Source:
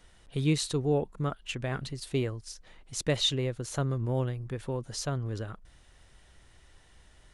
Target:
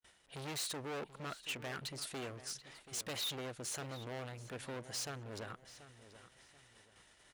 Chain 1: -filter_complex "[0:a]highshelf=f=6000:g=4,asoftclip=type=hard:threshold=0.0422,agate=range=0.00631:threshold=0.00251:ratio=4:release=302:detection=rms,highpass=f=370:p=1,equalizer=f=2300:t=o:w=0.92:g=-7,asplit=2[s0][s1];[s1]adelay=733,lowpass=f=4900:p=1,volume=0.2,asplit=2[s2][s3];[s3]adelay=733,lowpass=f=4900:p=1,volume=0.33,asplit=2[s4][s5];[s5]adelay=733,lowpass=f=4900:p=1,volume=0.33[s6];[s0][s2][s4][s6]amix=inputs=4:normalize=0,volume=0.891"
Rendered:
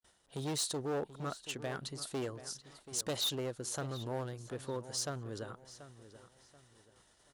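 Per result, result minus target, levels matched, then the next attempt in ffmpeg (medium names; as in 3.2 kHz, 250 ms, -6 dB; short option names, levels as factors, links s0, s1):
2 kHz band -6.0 dB; hard clipper: distortion -6 dB
-filter_complex "[0:a]highshelf=f=6000:g=4,asoftclip=type=hard:threshold=0.0422,agate=range=0.00631:threshold=0.00251:ratio=4:release=302:detection=rms,highpass=f=370:p=1,equalizer=f=2300:t=o:w=0.92:g=2.5,asplit=2[s0][s1];[s1]adelay=733,lowpass=f=4900:p=1,volume=0.2,asplit=2[s2][s3];[s3]adelay=733,lowpass=f=4900:p=1,volume=0.33,asplit=2[s4][s5];[s5]adelay=733,lowpass=f=4900:p=1,volume=0.33[s6];[s0][s2][s4][s6]amix=inputs=4:normalize=0,volume=0.891"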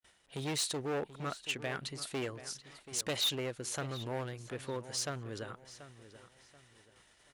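hard clipper: distortion -6 dB
-filter_complex "[0:a]highshelf=f=6000:g=4,asoftclip=type=hard:threshold=0.015,agate=range=0.00631:threshold=0.00251:ratio=4:release=302:detection=rms,highpass=f=370:p=1,equalizer=f=2300:t=o:w=0.92:g=2.5,asplit=2[s0][s1];[s1]adelay=733,lowpass=f=4900:p=1,volume=0.2,asplit=2[s2][s3];[s3]adelay=733,lowpass=f=4900:p=1,volume=0.33,asplit=2[s4][s5];[s5]adelay=733,lowpass=f=4900:p=1,volume=0.33[s6];[s0][s2][s4][s6]amix=inputs=4:normalize=0,volume=0.891"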